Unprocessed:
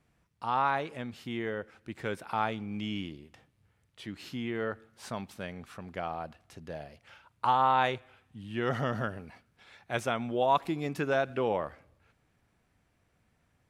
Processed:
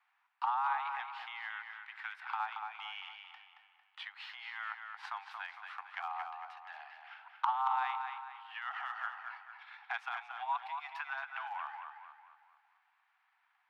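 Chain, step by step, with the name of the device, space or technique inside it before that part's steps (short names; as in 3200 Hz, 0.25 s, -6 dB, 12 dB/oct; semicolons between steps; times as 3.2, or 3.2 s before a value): air absorption 370 m; drum-bus smash (transient shaper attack +8 dB, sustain +3 dB; compressor 12:1, threshold -31 dBFS, peak gain reduction 14 dB; soft clip -19 dBFS, distortion -26 dB); steep high-pass 780 Hz 96 dB/oct; 1.57–2.4 HPF 1100 Hz 12 dB/oct; tape echo 0.226 s, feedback 46%, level -5.5 dB, low-pass 5000 Hz; gain +4 dB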